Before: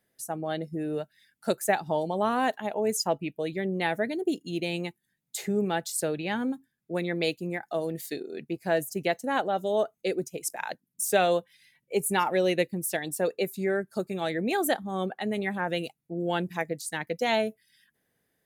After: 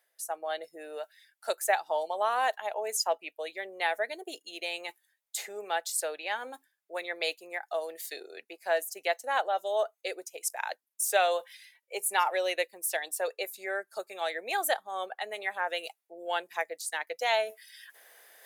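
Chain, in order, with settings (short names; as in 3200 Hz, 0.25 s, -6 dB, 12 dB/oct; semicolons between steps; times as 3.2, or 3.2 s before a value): HPF 570 Hz 24 dB/oct; reverse; upward compressor, threshold -38 dBFS; reverse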